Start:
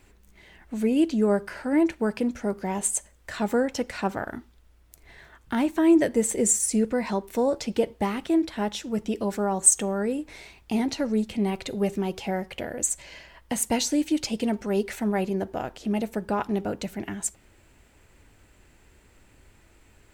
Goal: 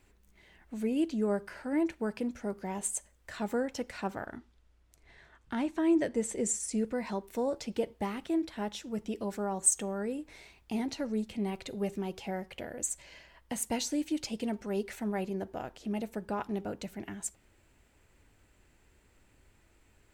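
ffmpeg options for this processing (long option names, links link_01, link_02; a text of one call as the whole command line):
ffmpeg -i in.wav -filter_complex "[0:a]asettb=1/sr,asplit=3[link_01][link_02][link_03];[link_01]atrim=end=4.264[link_04];[link_02]atrim=start=4.26:end=6.78,asetpts=PTS-STARTPTS,afade=type=in:duration=0.004:curve=qsin,afade=type=out:start_time=2.516:duration=0.004:curve=qsin,lowpass=8300[link_05];[link_03]atrim=start=6.776[link_06];[link_04][link_05]acrossfade=duration=0.004:curve1=hsin:curve2=qsin[link_07];[link_07][link_06]acrossfade=duration=0.004:curve1=qsin:curve2=hsin,volume=-8dB" out.wav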